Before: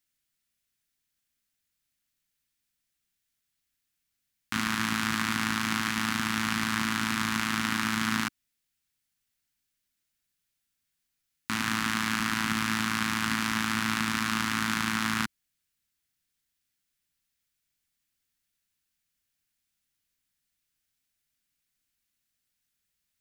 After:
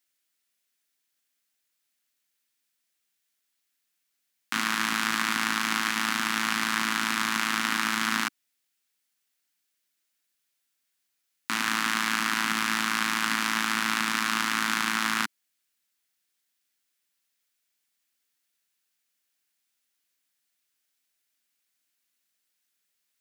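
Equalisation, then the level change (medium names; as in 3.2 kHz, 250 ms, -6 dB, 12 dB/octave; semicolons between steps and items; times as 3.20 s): high-pass 310 Hz 12 dB/octave; +3.0 dB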